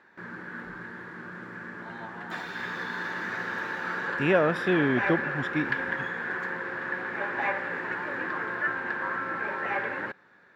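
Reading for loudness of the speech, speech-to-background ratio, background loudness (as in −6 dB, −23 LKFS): −27.0 LKFS, 4.5 dB, −31.5 LKFS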